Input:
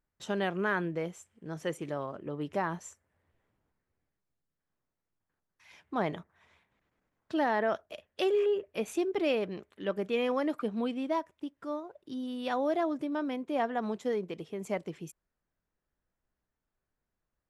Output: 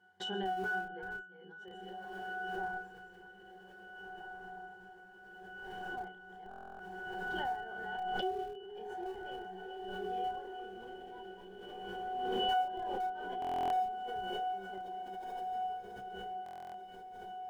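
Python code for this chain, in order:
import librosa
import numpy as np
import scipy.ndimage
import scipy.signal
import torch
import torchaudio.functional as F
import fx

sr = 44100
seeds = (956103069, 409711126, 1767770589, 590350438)

p1 = fx.reverse_delay(x, sr, ms=297, wet_db=-6)
p2 = scipy.signal.sosfilt(scipy.signal.butter(2, 480.0, 'highpass', fs=sr, output='sos'), p1)
p3 = fx.high_shelf(p2, sr, hz=4700.0, db=10.0)
p4 = fx.octave_resonator(p3, sr, note='F#', decay_s=0.48)
p5 = fx.schmitt(p4, sr, flips_db=-46.5)
p6 = p4 + (p5 * librosa.db_to_amplitude(-7.5))
p7 = fx.echo_diffused(p6, sr, ms=1752, feedback_pct=50, wet_db=-4.0)
p8 = fx.dynamic_eq(p7, sr, hz=730.0, q=0.84, threshold_db=-59.0, ratio=4.0, max_db=4)
p9 = fx.doubler(p8, sr, ms=31.0, db=-3.5)
p10 = fx.buffer_glitch(p9, sr, at_s=(6.49, 13.4, 16.44), block=1024, repeats=12)
p11 = fx.pre_swell(p10, sr, db_per_s=21.0)
y = p11 * librosa.db_to_amplitude(3.5)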